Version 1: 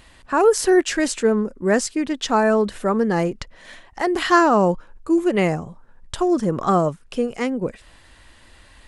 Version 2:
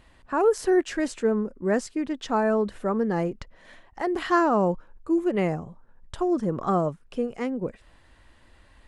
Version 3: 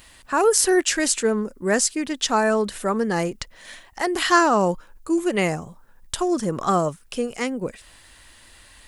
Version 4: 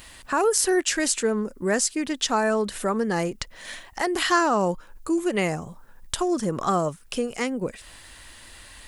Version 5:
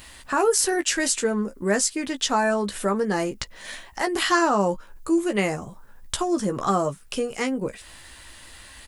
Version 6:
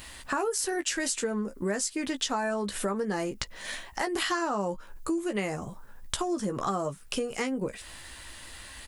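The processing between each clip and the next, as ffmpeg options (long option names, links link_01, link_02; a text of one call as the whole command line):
ffmpeg -i in.wav -af "highshelf=frequency=2300:gain=-9,volume=-5dB" out.wav
ffmpeg -i in.wav -af "crystalizer=i=8:c=0,volume=1dB" out.wav
ffmpeg -i in.wav -af "acompressor=threshold=-34dB:ratio=1.5,volume=3.5dB" out.wav
ffmpeg -i in.wav -filter_complex "[0:a]asplit=2[link_01][link_02];[link_02]adelay=15,volume=-7dB[link_03];[link_01][link_03]amix=inputs=2:normalize=0" out.wav
ffmpeg -i in.wav -af "acompressor=threshold=-27dB:ratio=5" out.wav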